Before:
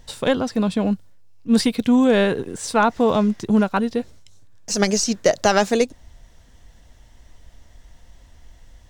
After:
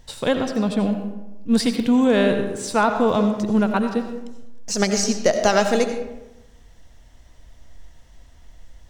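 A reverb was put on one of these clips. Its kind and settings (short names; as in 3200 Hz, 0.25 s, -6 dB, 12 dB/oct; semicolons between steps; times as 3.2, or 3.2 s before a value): digital reverb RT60 1 s, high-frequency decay 0.55×, pre-delay 45 ms, DRR 6.5 dB; gain -1.5 dB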